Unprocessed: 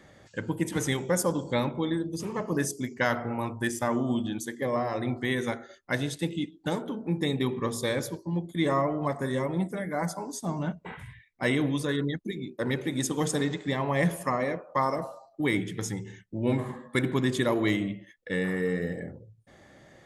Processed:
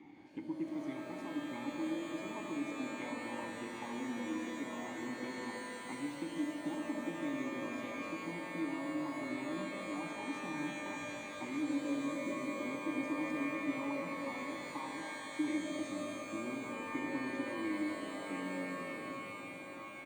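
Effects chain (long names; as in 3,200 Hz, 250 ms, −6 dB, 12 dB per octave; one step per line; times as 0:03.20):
downward compressor, threshold −41 dBFS, peak gain reduction 19 dB
formant filter u
on a send: echo with shifted repeats 310 ms, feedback 55%, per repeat −32 Hz, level −15.5 dB
on the sum: reverb with rising layers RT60 3.7 s, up +12 semitones, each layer −2 dB, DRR 3.5 dB
level +10 dB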